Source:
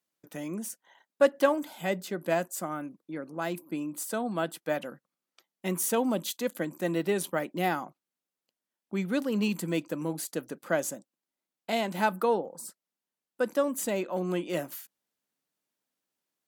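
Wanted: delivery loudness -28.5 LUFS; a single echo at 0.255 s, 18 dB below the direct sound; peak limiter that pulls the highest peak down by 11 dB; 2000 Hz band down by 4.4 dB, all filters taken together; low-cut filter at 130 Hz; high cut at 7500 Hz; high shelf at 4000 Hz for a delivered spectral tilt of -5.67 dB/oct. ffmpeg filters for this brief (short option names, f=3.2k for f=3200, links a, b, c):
-af "highpass=130,lowpass=7.5k,equalizer=f=2k:t=o:g=-4,highshelf=f=4k:g=-8.5,alimiter=limit=-22dB:level=0:latency=1,aecho=1:1:255:0.126,volume=6dB"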